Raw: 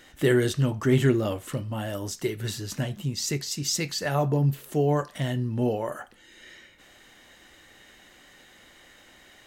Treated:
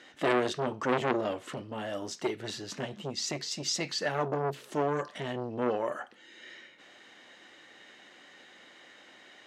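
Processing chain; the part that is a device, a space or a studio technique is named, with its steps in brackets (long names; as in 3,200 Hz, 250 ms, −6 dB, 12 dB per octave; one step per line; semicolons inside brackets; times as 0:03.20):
public-address speaker with an overloaded transformer (saturating transformer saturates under 1,400 Hz; band-pass filter 230–5,200 Hz)
0:04.51–0:05.03: bass and treble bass 0 dB, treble +4 dB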